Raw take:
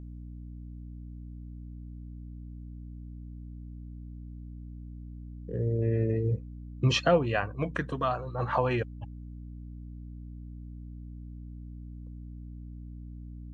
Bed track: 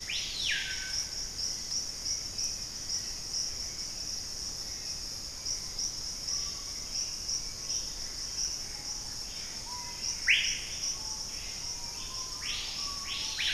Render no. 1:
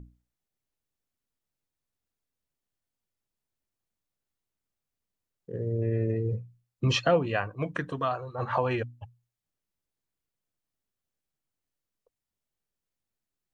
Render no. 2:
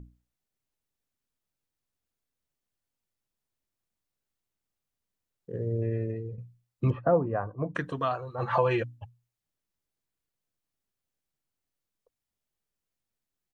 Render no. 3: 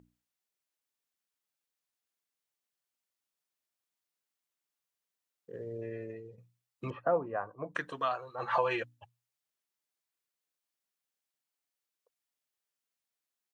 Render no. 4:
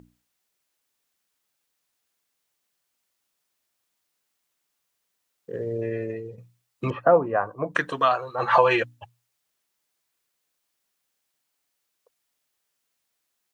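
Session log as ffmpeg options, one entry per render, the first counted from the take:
ffmpeg -i in.wav -af "bandreject=frequency=60:width_type=h:width=6,bandreject=frequency=120:width_type=h:width=6,bandreject=frequency=180:width_type=h:width=6,bandreject=frequency=240:width_type=h:width=6,bandreject=frequency=300:width_type=h:width=6" out.wav
ffmpeg -i in.wav -filter_complex "[0:a]asettb=1/sr,asplit=3[link_01][link_02][link_03];[link_01]atrim=end=6.904[link_04];[link_02]atrim=start=6.9:end=7.75,asetpts=PTS-STARTPTS,afade=type=in:duration=0.004:curve=qsin,afade=type=out:start_time=0.846:duration=0.004:curve=qsin,lowpass=frequency=1200:width=0.5412,lowpass=frequency=1200:width=1.3066[link_05];[link_03]atrim=start=7.746[link_06];[link_04][link_05]acrossfade=duration=0.004:curve1=hsin:curve2=qsin[link_07];[link_07][link_06]acrossfade=duration=0.004:curve1=qsin:curve2=hsin,asplit=3[link_08][link_09][link_10];[link_08]afade=type=out:start_time=8.41:duration=0.02[link_11];[link_09]aecho=1:1:5.9:0.65,afade=type=in:start_time=8.41:duration=0.02,afade=type=out:start_time=8.97:duration=0.02[link_12];[link_10]afade=type=in:start_time=8.97:duration=0.02[link_13];[link_11][link_12][link_13]amix=inputs=3:normalize=0,asplit=2[link_14][link_15];[link_14]atrim=end=6.38,asetpts=PTS-STARTPTS,afade=type=out:start_time=5.73:duration=0.65:silence=0.251189[link_16];[link_15]atrim=start=6.38,asetpts=PTS-STARTPTS,afade=type=in:duration=0.004:curve=hsin:silence=0.251189[link_17];[link_16][link_17]concat=n=2:v=0:a=1" out.wav
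ffmpeg -i in.wav -af "highpass=frequency=850:poles=1" out.wav
ffmpeg -i in.wav -af "volume=11.5dB" out.wav

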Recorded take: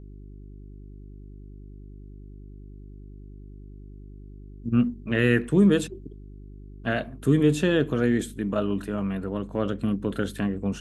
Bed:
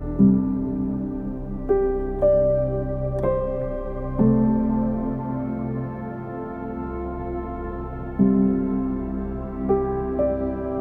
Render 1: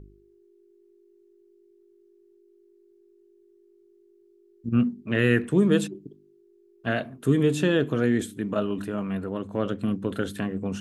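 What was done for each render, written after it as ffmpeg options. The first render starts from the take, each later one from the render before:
ffmpeg -i in.wav -af "bandreject=frequency=50:width_type=h:width=4,bandreject=frequency=100:width_type=h:width=4,bandreject=frequency=150:width_type=h:width=4,bandreject=frequency=200:width_type=h:width=4,bandreject=frequency=250:width_type=h:width=4,bandreject=frequency=300:width_type=h:width=4" out.wav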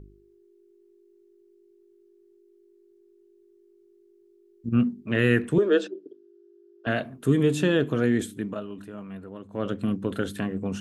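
ffmpeg -i in.wav -filter_complex "[0:a]asettb=1/sr,asplit=3[link_01][link_02][link_03];[link_01]atrim=end=5.584[link_04];[link_02]atrim=start=5.58:end=6.87,asetpts=PTS-STARTPTS,afade=type=in:duration=0.004:curve=qsin,afade=type=out:start_time=1.286:duration=0.004:curve=qsin,highpass=frequency=340:width=0.5412,highpass=frequency=340:width=1.3066,equalizer=frequency=360:width_type=q:width=4:gain=6,equalizer=frequency=550:width_type=q:width=4:gain=8,equalizer=frequency=1000:width_type=q:width=4:gain=-5,equalizer=frequency=1500:width_type=q:width=4:gain=8,equalizer=frequency=2200:width_type=q:width=4:gain=-8,equalizer=frequency=4100:width_type=q:width=4:gain=-3,lowpass=frequency=5500:width=0.5412,lowpass=frequency=5500:width=1.3066[link_05];[link_03]atrim=start=6.866[link_06];[link_04][link_05]acrossfade=duration=0.004:curve1=hsin:curve2=qsin[link_07];[link_07][link_06]acrossfade=duration=0.004:curve1=qsin:curve2=hsin,asplit=3[link_08][link_09][link_10];[link_08]atrim=end=8.6,asetpts=PTS-STARTPTS,afade=type=out:start_time=8.31:duration=0.29:curve=qsin:silence=0.334965[link_11];[link_09]atrim=start=8.6:end=9.49,asetpts=PTS-STARTPTS,volume=-9.5dB[link_12];[link_10]atrim=start=9.49,asetpts=PTS-STARTPTS,afade=type=in:duration=0.29:curve=qsin:silence=0.334965[link_13];[link_11][link_12][link_13]concat=n=3:v=0:a=1" out.wav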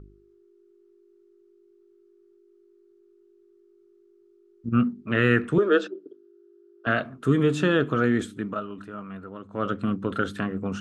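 ffmpeg -i in.wav -af "lowpass=6600,equalizer=frequency=1300:width_type=o:width=0.42:gain=12.5" out.wav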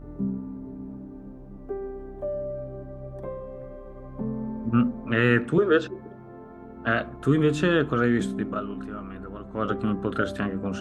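ffmpeg -i in.wav -i bed.wav -filter_complex "[1:a]volume=-13dB[link_01];[0:a][link_01]amix=inputs=2:normalize=0" out.wav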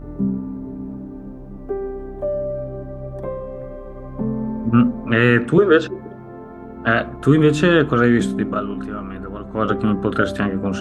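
ffmpeg -i in.wav -af "volume=7.5dB,alimiter=limit=-3dB:level=0:latency=1" out.wav

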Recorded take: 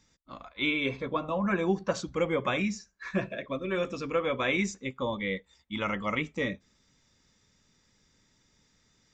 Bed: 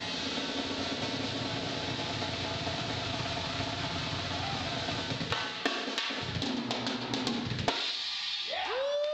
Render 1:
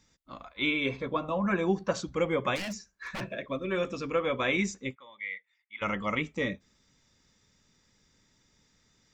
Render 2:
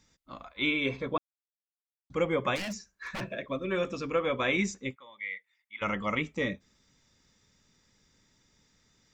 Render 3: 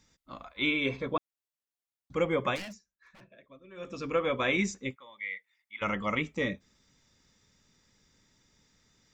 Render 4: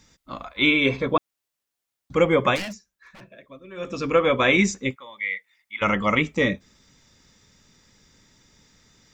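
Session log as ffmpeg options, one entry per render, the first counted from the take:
ffmpeg -i in.wav -filter_complex "[0:a]asplit=3[link_01][link_02][link_03];[link_01]afade=type=out:start_time=2.55:duration=0.02[link_04];[link_02]aeval=exprs='0.0299*(abs(mod(val(0)/0.0299+3,4)-2)-1)':channel_layout=same,afade=type=in:start_time=2.55:duration=0.02,afade=type=out:start_time=3.2:duration=0.02[link_05];[link_03]afade=type=in:start_time=3.2:duration=0.02[link_06];[link_04][link_05][link_06]amix=inputs=3:normalize=0,asplit=3[link_07][link_08][link_09];[link_07]afade=type=out:start_time=4.94:duration=0.02[link_10];[link_08]bandpass=frequency=2100:width_type=q:width=4.1,afade=type=in:start_time=4.94:duration=0.02,afade=type=out:start_time=5.81:duration=0.02[link_11];[link_09]afade=type=in:start_time=5.81:duration=0.02[link_12];[link_10][link_11][link_12]amix=inputs=3:normalize=0" out.wav
ffmpeg -i in.wav -filter_complex "[0:a]asplit=3[link_01][link_02][link_03];[link_01]atrim=end=1.18,asetpts=PTS-STARTPTS,afade=type=out:start_time=1.176:duration=0.004:curve=hsin[link_04];[link_02]atrim=start=1.18:end=2.1,asetpts=PTS-STARTPTS,volume=0[link_05];[link_03]atrim=start=2.1,asetpts=PTS-STARTPTS,afade=type=in:duration=0.004:curve=hsin[link_06];[link_04][link_05][link_06]concat=n=3:v=0:a=1" out.wav
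ffmpeg -i in.wav -filter_complex "[0:a]asplit=3[link_01][link_02][link_03];[link_01]atrim=end=2.81,asetpts=PTS-STARTPTS,afade=type=out:start_time=2.47:duration=0.34:silence=0.1[link_04];[link_02]atrim=start=2.81:end=3.75,asetpts=PTS-STARTPTS,volume=-20dB[link_05];[link_03]atrim=start=3.75,asetpts=PTS-STARTPTS,afade=type=in:duration=0.34:silence=0.1[link_06];[link_04][link_05][link_06]concat=n=3:v=0:a=1" out.wav
ffmpeg -i in.wav -af "volume=9.5dB" out.wav

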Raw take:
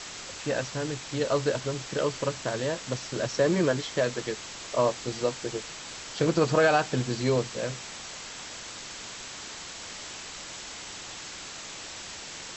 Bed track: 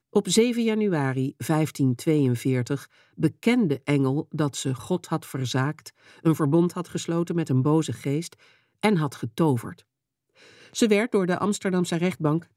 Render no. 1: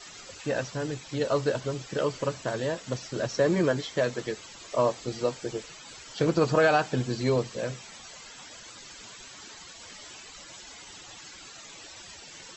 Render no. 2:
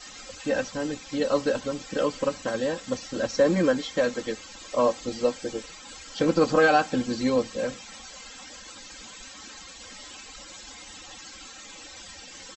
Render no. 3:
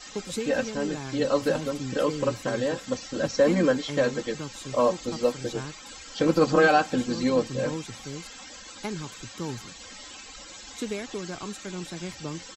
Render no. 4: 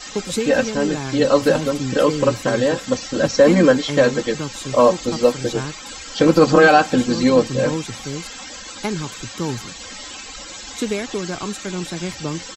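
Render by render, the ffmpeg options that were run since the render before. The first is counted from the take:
ffmpeg -i in.wav -af "afftdn=noise_reduction=13:noise_floor=-41" out.wav
ffmpeg -i in.wav -af "lowshelf=frequency=130:gain=4.5,aecho=1:1:3.8:0.78" out.wav
ffmpeg -i in.wav -i bed.wav -filter_complex "[1:a]volume=-12.5dB[link_01];[0:a][link_01]amix=inputs=2:normalize=0" out.wav
ffmpeg -i in.wav -af "volume=9dB,alimiter=limit=-2dB:level=0:latency=1" out.wav

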